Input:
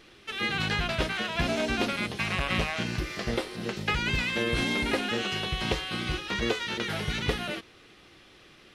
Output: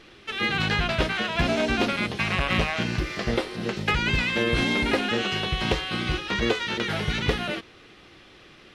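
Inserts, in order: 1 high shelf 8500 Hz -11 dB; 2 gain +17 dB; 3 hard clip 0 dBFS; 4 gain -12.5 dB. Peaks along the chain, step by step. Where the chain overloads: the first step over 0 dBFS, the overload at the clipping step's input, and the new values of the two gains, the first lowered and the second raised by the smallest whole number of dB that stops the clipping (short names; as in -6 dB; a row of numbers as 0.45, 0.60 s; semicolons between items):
-13.5, +3.5, 0.0, -12.5 dBFS; step 2, 3.5 dB; step 2 +13 dB, step 4 -8.5 dB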